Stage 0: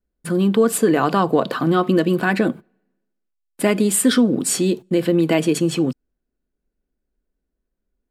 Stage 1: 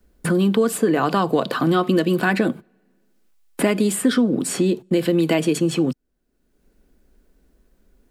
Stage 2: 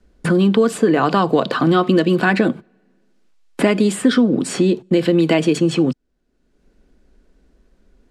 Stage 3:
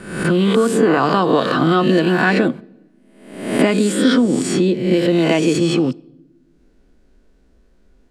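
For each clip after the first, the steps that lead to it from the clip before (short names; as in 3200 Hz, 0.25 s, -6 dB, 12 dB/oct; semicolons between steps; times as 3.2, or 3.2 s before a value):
three-band squash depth 70%; gain -1.5 dB
LPF 6500 Hz 12 dB/oct; gain +3.5 dB
spectral swells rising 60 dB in 0.74 s; on a send at -22.5 dB: reverb RT60 0.95 s, pre-delay 7 ms; on the sum: gain -1.5 dB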